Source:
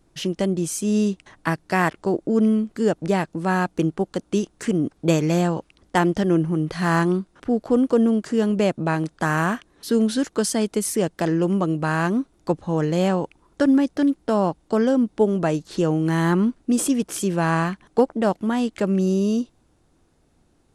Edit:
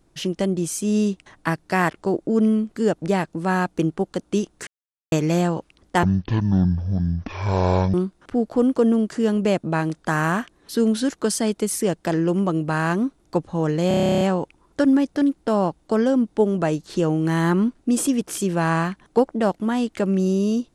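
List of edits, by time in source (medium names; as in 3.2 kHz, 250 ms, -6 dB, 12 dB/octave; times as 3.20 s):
4.67–5.12 s: mute
6.03–7.08 s: speed 55%
13.02 s: stutter 0.03 s, 12 plays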